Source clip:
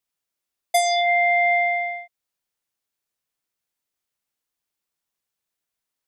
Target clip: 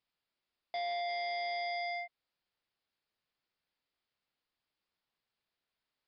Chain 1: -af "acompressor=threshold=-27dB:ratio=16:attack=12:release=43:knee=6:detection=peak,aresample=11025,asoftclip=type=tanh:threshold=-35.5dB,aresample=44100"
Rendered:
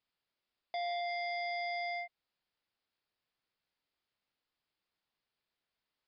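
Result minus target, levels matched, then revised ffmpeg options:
downward compressor: peak gain reduction +11.5 dB
-af "aresample=11025,asoftclip=type=tanh:threshold=-35.5dB,aresample=44100"

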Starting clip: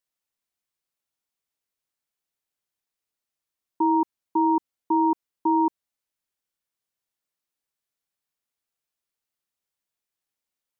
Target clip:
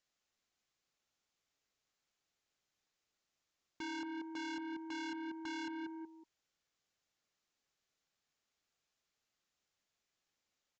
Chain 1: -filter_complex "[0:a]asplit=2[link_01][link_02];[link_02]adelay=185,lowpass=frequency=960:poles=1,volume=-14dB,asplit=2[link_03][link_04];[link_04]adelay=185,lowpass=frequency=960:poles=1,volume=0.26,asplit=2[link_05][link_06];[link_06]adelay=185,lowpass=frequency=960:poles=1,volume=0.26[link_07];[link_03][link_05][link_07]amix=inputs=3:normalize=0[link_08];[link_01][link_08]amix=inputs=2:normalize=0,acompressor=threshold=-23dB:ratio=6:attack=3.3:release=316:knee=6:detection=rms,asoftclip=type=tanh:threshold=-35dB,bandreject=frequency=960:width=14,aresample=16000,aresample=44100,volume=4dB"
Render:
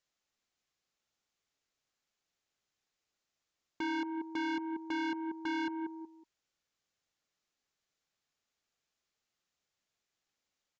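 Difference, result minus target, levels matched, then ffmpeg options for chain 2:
soft clipping: distortion −4 dB
-filter_complex "[0:a]asplit=2[link_01][link_02];[link_02]adelay=185,lowpass=frequency=960:poles=1,volume=-14dB,asplit=2[link_03][link_04];[link_04]adelay=185,lowpass=frequency=960:poles=1,volume=0.26,asplit=2[link_05][link_06];[link_06]adelay=185,lowpass=frequency=960:poles=1,volume=0.26[link_07];[link_03][link_05][link_07]amix=inputs=3:normalize=0[link_08];[link_01][link_08]amix=inputs=2:normalize=0,acompressor=threshold=-23dB:ratio=6:attack=3.3:release=316:knee=6:detection=rms,asoftclip=type=tanh:threshold=-44dB,bandreject=frequency=960:width=14,aresample=16000,aresample=44100,volume=4dB"

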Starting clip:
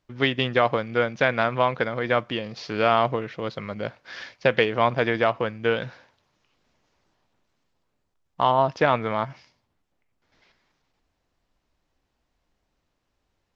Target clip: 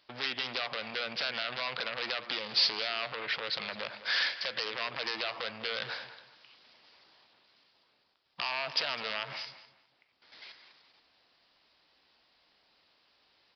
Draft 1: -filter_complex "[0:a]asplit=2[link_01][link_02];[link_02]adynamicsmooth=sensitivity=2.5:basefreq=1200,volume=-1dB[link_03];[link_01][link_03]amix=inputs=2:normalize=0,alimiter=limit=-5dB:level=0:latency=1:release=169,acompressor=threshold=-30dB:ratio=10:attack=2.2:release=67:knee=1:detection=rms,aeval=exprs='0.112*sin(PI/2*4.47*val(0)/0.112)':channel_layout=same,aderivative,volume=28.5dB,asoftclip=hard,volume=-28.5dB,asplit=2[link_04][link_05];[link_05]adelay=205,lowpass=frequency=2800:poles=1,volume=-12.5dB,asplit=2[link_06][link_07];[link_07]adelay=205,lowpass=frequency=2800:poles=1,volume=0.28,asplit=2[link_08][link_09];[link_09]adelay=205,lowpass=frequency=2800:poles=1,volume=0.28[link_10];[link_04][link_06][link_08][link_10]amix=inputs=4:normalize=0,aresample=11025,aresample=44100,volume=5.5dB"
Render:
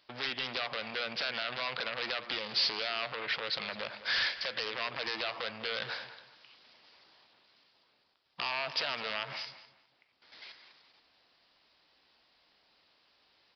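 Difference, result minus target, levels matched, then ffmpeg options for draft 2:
gain into a clipping stage and back: distortion +27 dB
-filter_complex "[0:a]asplit=2[link_01][link_02];[link_02]adynamicsmooth=sensitivity=2.5:basefreq=1200,volume=-1dB[link_03];[link_01][link_03]amix=inputs=2:normalize=0,alimiter=limit=-5dB:level=0:latency=1:release=169,acompressor=threshold=-30dB:ratio=10:attack=2.2:release=67:knee=1:detection=rms,aeval=exprs='0.112*sin(PI/2*4.47*val(0)/0.112)':channel_layout=same,aderivative,volume=17dB,asoftclip=hard,volume=-17dB,asplit=2[link_04][link_05];[link_05]adelay=205,lowpass=frequency=2800:poles=1,volume=-12.5dB,asplit=2[link_06][link_07];[link_07]adelay=205,lowpass=frequency=2800:poles=1,volume=0.28,asplit=2[link_08][link_09];[link_09]adelay=205,lowpass=frequency=2800:poles=1,volume=0.28[link_10];[link_04][link_06][link_08][link_10]amix=inputs=4:normalize=0,aresample=11025,aresample=44100,volume=5.5dB"

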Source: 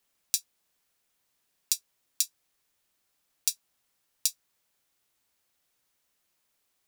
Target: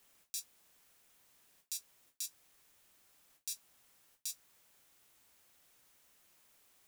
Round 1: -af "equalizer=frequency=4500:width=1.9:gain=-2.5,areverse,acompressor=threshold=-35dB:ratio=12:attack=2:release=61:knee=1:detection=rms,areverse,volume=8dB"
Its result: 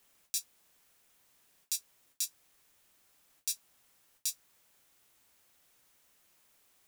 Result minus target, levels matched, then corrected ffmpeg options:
downward compressor: peak gain reduction −7.5 dB
-af "equalizer=frequency=4500:width=1.9:gain=-2.5,areverse,acompressor=threshold=-43dB:ratio=12:attack=2:release=61:knee=1:detection=rms,areverse,volume=8dB"

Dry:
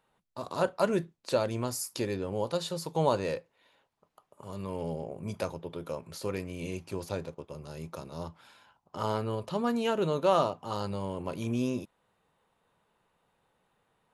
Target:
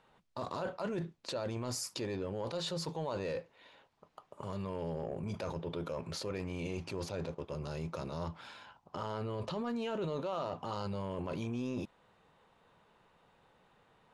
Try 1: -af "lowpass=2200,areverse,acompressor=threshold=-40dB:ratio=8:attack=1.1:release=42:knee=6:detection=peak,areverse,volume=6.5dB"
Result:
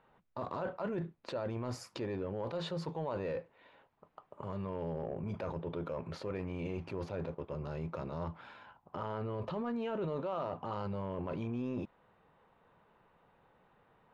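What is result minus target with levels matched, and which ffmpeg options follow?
8,000 Hz band −13.0 dB
-af "lowpass=6000,areverse,acompressor=threshold=-40dB:ratio=8:attack=1.1:release=42:knee=6:detection=peak,areverse,volume=6.5dB"

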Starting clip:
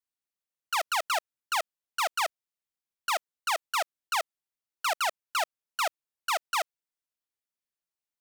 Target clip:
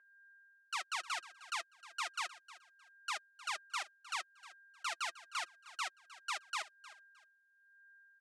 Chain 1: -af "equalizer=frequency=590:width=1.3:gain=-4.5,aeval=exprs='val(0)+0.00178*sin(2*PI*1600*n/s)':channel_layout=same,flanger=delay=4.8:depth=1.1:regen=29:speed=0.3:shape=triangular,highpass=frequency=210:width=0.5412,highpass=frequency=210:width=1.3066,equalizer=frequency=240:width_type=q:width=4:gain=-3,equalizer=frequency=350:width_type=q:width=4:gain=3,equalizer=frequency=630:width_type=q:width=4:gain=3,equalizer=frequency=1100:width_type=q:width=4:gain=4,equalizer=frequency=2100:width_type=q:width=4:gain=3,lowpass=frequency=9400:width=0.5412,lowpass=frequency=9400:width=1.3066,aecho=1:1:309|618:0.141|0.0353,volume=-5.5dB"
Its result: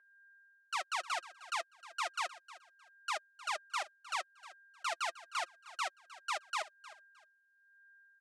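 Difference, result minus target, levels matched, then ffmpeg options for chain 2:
500 Hz band +8.0 dB
-af "equalizer=frequency=590:width=1.3:gain=-16,aeval=exprs='val(0)+0.00178*sin(2*PI*1600*n/s)':channel_layout=same,flanger=delay=4.8:depth=1.1:regen=29:speed=0.3:shape=triangular,highpass=frequency=210:width=0.5412,highpass=frequency=210:width=1.3066,equalizer=frequency=240:width_type=q:width=4:gain=-3,equalizer=frequency=350:width_type=q:width=4:gain=3,equalizer=frequency=630:width_type=q:width=4:gain=3,equalizer=frequency=1100:width_type=q:width=4:gain=4,equalizer=frequency=2100:width_type=q:width=4:gain=3,lowpass=frequency=9400:width=0.5412,lowpass=frequency=9400:width=1.3066,aecho=1:1:309|618:0.141|0.0353,volume=-5.5dB"

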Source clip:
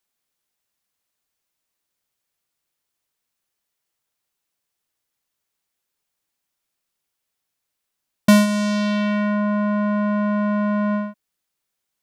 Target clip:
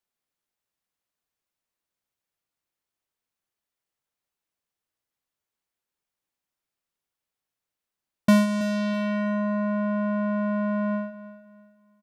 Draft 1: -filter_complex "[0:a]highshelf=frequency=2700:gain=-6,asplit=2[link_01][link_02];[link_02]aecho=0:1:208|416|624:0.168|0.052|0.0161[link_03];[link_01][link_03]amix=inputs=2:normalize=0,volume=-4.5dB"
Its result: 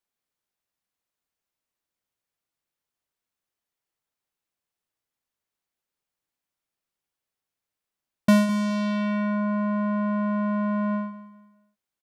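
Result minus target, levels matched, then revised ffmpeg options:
echo 118 ms early
-filter_complex "[0:a]highshelf=frequency=2700:gain=-6,asplit=2[link_01][link_02];[link_02]aecho=0:1:326|652|978:0.168|0.052|0.0161[link_03];[link_01][link_03]amix=inputs=2:normalize=0,volume=-4.5dB"

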